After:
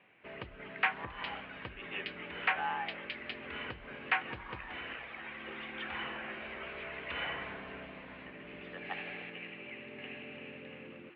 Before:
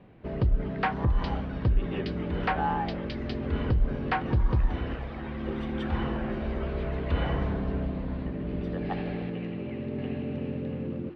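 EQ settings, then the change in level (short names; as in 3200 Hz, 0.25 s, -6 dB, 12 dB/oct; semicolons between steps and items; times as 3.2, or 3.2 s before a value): band-pass 2500 Hz, Q 2.4; air absorption 290 m; +10.0 dB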